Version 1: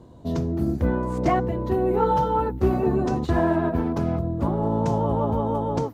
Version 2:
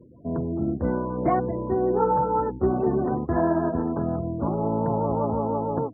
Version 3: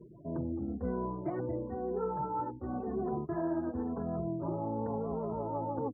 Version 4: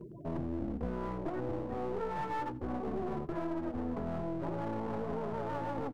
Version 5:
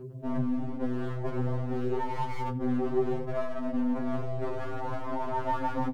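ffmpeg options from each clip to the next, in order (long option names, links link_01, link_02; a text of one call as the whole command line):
ffmpeg -i in.wav -af "lowpass=1400,afftfilt=real='re*gte(hypot(re,im),0.00891)':imag='im*gte(hypot(re,im),0.00891)':win_size=1024:overlap=0.75,highpass=frequency=150:poles=1" out.wav
ffmpeg -i in.wav -filter_complex "[0:a]equalizer=frequency=370:width_type=o:width=0.77:gain=2.5,areverse,acompressor=threshold=-29dB:ratio=6,areverse,asplit=2[link_01][link_02];[link_02]adelay=2.5,afreqshift=-0.95[link_03];[link_01][link_03]amix=inputs=2:normalize=1" out.wav
ffmpeg -i in.wav -af "acompressor=threshold=-36dB:ratio=6,aeval=exprs='clip(val(0),-1,0.00531)':channel_layout=same,aecho=1:1:84:0.1,volume=5.5dB" out.wav
ffmpeg -i in.wav -af "afftfilt=real='re*2.45*eq(mod(b,6),0)':imag='im*2.45*eq(mod(b,6),0)':win_size=2048:overlap=0.75,volume=8.5dB" out.wav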